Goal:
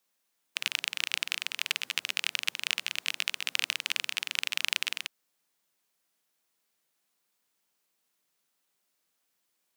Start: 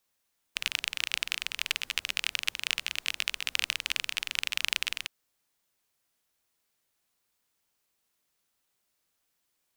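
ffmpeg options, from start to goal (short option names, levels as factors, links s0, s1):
-af "highpass=f=140:w=0.5412,highpass=f=140:w=1.3066"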